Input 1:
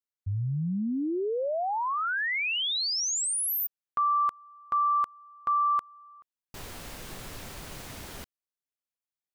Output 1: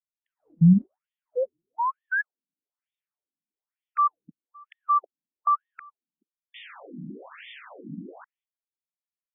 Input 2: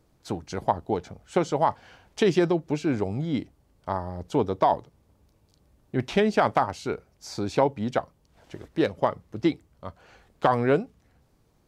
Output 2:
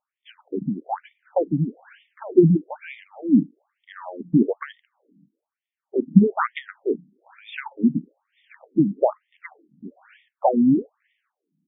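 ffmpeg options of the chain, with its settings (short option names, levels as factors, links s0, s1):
-af "agate=range=0.158:threshold=0.00178:ratio=16:release=446:detection=peak,bass=f=250:g=15,treble=f=4000:g=10,afftfilt=real='re*between(b*sr/1024,220*pow(2600/220,0.5+0.5*sin(2*PI*1.1*pts/sr))/1.41,220*pow(2600/220,0.5+0.5*sin(2*PI*1.1*pts/sr))*1.41)':imag='im*between(b*sr/1024,220*pow(2600/220,0.5+0.5*sin(2*PI*1.1*pts/sr))/1.41,220*pow(2600/220,0.5+0.5*sin(2*PI*1.1*pts/sr))*1.41)':win_size=1024:overlap=0.75,volume=1.88"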